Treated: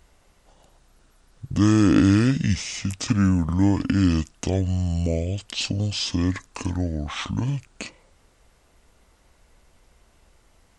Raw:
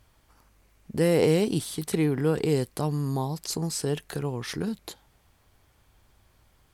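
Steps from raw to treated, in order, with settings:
change of speed 0.625×
level +4.5 dB

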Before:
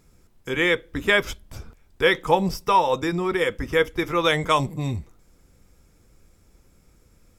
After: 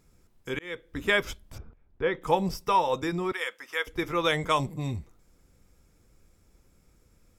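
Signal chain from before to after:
0:00.59–0:01.03: fade in
0:01.58–0:02.22: head-to-tape spacing loss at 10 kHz 39 dB
0:03.32–0:03.87: high-pass filter 920 Hz 12 dB per octave
level −5 dB

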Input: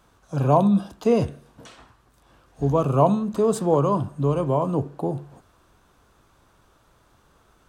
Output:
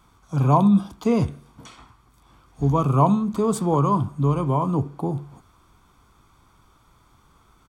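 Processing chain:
comb filter 0.9 ms, depth 53%

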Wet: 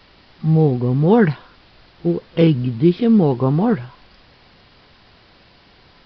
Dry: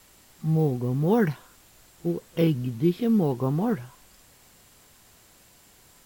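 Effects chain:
downsampling to 11,025 Hz
level +8.5 dB

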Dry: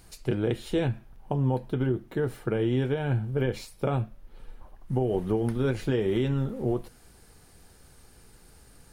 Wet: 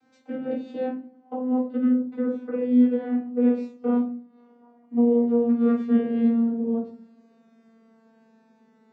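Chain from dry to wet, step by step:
vocoder with a gliding carrier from C4, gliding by −3 semitones
high-shelf EQ 4,200 Hz −9.5 dB
rectangular room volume 240 cubic metres, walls furnished, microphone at 3.7 metres
level −5 dB

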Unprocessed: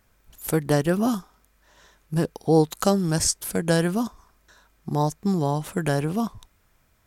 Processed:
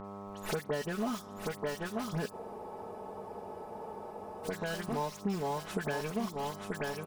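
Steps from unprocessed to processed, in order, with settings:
stylus tracing distortion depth 0.22 ms
repeating echo 934 ms, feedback 21%, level −8.5 dB
on a send at −22.5 dB: convolution reverb RT60 1.2 s, pre-delay 12 ms
on the sum: mid-hump overdrive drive 13 dB, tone 6,300 Hz, clips at −6.5 dBFS
high-shelf EQ 9,800 Hz −8.5 dB
in parallel at −5 dB: bit reduction 4 bits
on the sum: all-pass dispersion highs, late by 48 ms, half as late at 2,700 Hz
hum with harmonics 100 Hz, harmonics 13, −38 dBFS −3 dB per octave
downward compressor 5 to 1, threshold −27 dBFS, peak gain reduction 16 dB
comb filter 4.7 ms, depth 59%
frozen spectrum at 0:02.34, 2.10 s
level −7 dB

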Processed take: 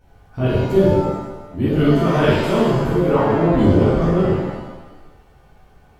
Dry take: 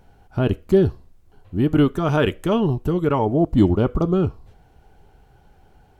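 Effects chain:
reverb with rising layers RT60 1.1 s, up +7 semitones, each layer −8 dB, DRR −11 dB
level −8 dB

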